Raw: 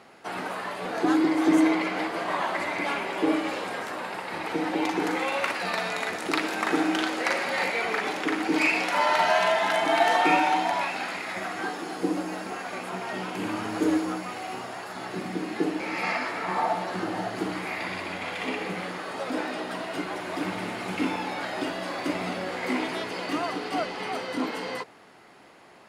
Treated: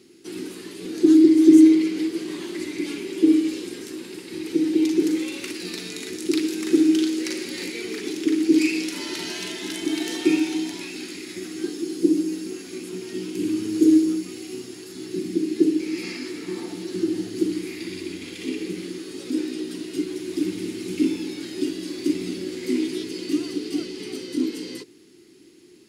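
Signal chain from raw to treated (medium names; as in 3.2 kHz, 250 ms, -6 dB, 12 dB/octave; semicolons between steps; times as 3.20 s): FFT filter 210 Hz 0 dB, 350 Hz +12 dB, 630 Hz -25 dB, 1.3 kHz -18 dB, 2.5 kHz -5 dB, 5.5 kHz +6 dB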